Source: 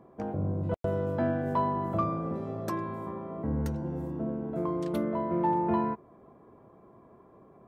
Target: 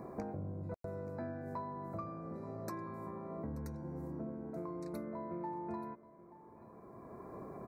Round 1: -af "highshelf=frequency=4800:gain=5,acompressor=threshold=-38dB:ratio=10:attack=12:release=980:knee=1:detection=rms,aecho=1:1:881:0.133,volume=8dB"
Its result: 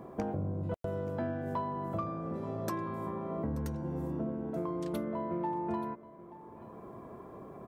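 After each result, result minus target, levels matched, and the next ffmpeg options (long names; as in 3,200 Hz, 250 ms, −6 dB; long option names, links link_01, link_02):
downward compressor: peak gain reduction −7 dB; 4,000 Hz band +3.0 dB
-af "highshelf=frequency=4800:gain=5,acompressor=threshold=-46dB:ratio=10:attack=12:release=980:knee=1:detection=rms,aecho=1:1:881:0.133,volume=8dB"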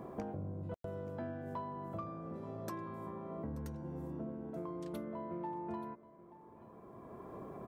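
4,000 Hz band +3.0 dB
-af "asuperstop=centerf=3100:order=12:qfactor=2.5,highshelf=frequency=4800:gain=5,acompressor=threshold=-46dB:ratio=10:attack=12:release=980:knee=1:detection=rms,aecho=1:1:881:0.133,volume=8dB"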